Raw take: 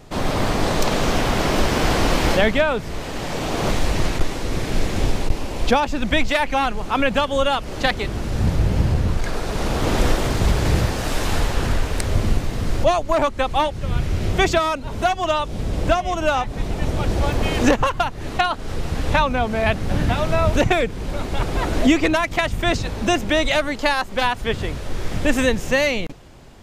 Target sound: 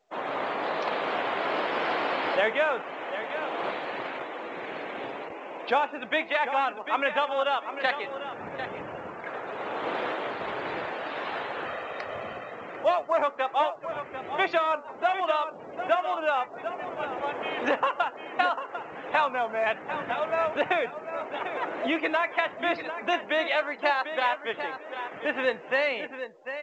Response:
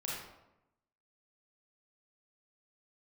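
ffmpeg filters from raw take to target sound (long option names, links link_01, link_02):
-filter_complex "[0:a]highpass=530,lowpass=2700,asplit=2[link_01][link_02];[1:a]atrim=start_sample=2205,atrim=end_sample=4410,highshelf=frequency=4100:gain=10.5[link_03];[link_02][link_03]afir=irnorm=-1:irlink=0,volume=-24dB[link_04];[link_01][link_04]amix=inputs=2:normalize=0,flanger=delay=5.8:depth=1.7:regen=86:speed=1.1:shape=sinusoidal,asettb=1/sr,asplit=3[link_05][link_06][link_07];[link_05]atrim=end=11.664[link_08];[link_06]atrim=start=11.66:end=12.54,asetpts=PTS-STARTPTS,afade=type=in:duration=0.004:curve=qsin,afade=type=out:start_time=0.876:duration=0.004:curve=qsin,aecho=1:1:1.6:0.49,atrim=end_sample=38808[link_09];[link_07]atrim=start=12.536[link_10];[link_08][link_09]acrossfade=duration=0.004:curve1=hsin:curve2=qsin[link_11];[link_11][link_10]acrossfade=duration=0.004:curve1=qsin:curve2=hsin,aecho=1:1:746|1492|2238:0.316|0.0885|0.0248,afftdn=noise_reduction=25:noise_floor=-44" -ar 16000 -c:a pcm_mulaw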